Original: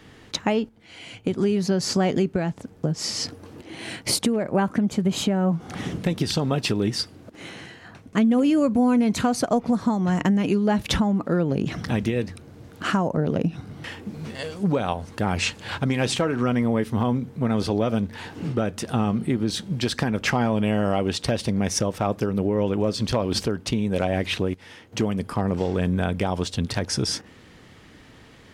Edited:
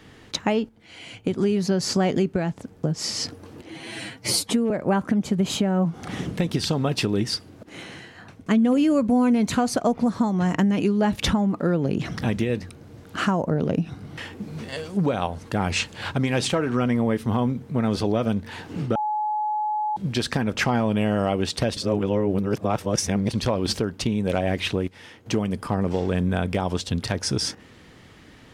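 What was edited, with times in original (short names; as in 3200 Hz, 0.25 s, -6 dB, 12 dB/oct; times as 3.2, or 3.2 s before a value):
3.7–4.37 stretch 1.5×
18.62–19.63 bleep 849 Hz -22 dBFS
21.43–23 reverse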